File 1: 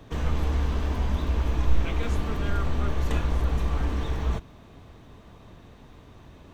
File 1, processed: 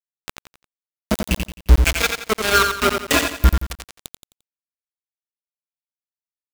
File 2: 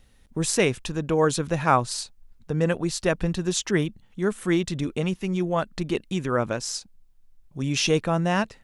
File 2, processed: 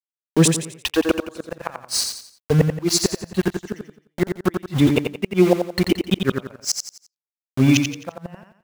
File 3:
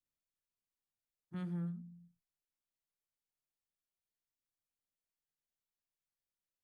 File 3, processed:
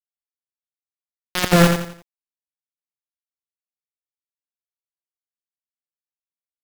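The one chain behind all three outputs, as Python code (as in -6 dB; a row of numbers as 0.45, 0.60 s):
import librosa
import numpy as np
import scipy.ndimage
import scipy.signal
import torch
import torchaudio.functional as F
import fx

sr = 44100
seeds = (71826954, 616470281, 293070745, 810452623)

p1 = scipy.signal.sosfilt(scipy.signal.butter(4, 58.0, 'highpass', fs=sr, output='sos'), x)
p2 = fx.noise_reduce_blind(p1, sr, reduce_db=26)
p3 = fx.rider(p2, sr, range_db=5, speed_s=0.5)
p4 = p2 + (p3 * 10.0 ** (-0.5 / 20.0))
p5 = np.where(np.abs(p4) >= 10.0 ** (-30.5 / 20.0), p4, 0.0)
p6 = fx.gate_flip(p5, sr, shuts_db=-11.0, range_db=-36)
p7 = p6 + fx.echo_feedback(p6, sr, ms=87, feedback_pct=36, wet_db=-6, dry=0)
y = librosa.util.normalize(p7) * 10.0 ** (-1.5 / 20.0)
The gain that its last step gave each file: +19.0, +7.0, +23.0 dB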